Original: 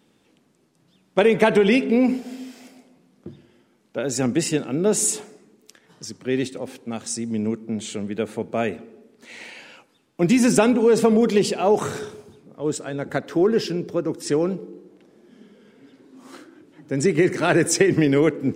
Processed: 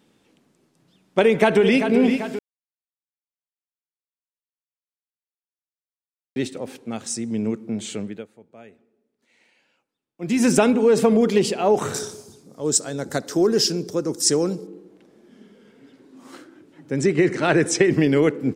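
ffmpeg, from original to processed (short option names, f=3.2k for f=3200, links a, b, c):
-filter_complex "[0:a]asplit=2[a][b];[b]afade=t=in:st=1.22:d=0.01,afade=t=out:st=1.87:d=0.01,aecho=0:1:390|780|1170|1560|1950|2340|2730:0.398107|0.218959|0.120427|0.0662351|0.0364293|0.0200361|0.0110199[c];[a][c]amix=inputs=2:normalize=0,asettb=1/sr,asplit=3[d][e][f];[d]atrim=end=11.944[g];[e]atrim=start=11.94:end=14.67,asetpts=PTS-STARTPTS,afade=t=in:d=0.004:c=qsin,afade=t=out:st=2.726:d=0.004:c=qsin,highshelf=f=3.9k:t=q:w=1.5:g=12[h];[f]atrim=start=14.666[i];[g][h]acrossfade=d=0.004:c1=hsin:c2=qsin[j];[j][i]acrossfade=d=0.004:c1=qsin:c2=hsin,asettb=1/sr,asplit=3[k][l][m];[k]atrim=end=17.004[n];[l]atrim=start=17:end=17.84,asetpts=PTS-STARTPTS,afade=t=in:d=0.004:c=qsin,afade=t=out:st=0.836:d=0.004:c=qsin,lowpass=7.5k[o];[m]atrim=start=17.836[p];[n][o]acrossfade=d=0.004:c1=hsin:c2=qsin[q];[q][p]acrossfade=d=0.004:c1=qsin:c2=hsin,asplit=5[r][s][t][u][v];[r]atrim=end=2.39,asetpts=PTS-STARTPTS,afade=t=out:st=2.386:d=0.004:c=hsin[w];[s]atrim=start=2.39:end=6.36,asetpts=PTS-STARTPTS,volume=0[x];[t]atrim=start=6.36:end=8.27,asetpts=PTS-STARTPTS,afade=t=in:d=0.004:c=hsin,afade=t=out:st=1.64:d=0.27:silence=0.0841395[y];[u]atrim=start=8.27:end=10.18,asetpts=PTS-STARTPTS,volume=-21.5dB[z];[v]atrim=start=10.18,asetpts=PTS-STARTPTS,afade=t=in:d=0.27:silence=0.0841395[aa];[w][x][y][z][aa]concat=n=5:v=0:a=1"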